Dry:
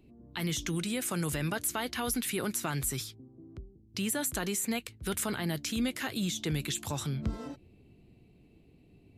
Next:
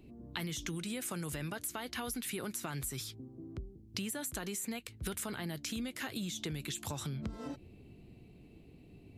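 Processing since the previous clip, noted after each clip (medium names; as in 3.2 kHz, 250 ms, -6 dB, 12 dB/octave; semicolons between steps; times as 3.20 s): compression 12:1, threshold -39 dBFS, peak gain reduction 14 dB; trim +3.5 dB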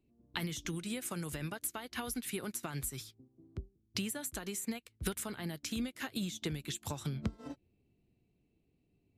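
upward expansion 2.5:1, over -51 dBFS; trim +5.5 dB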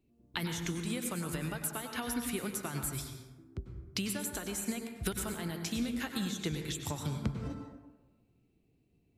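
plate-style reverb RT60 1.2 s, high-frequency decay 0.45×, pre-delay 85 ms, DRR 4.5 dB; trim +1.5 dB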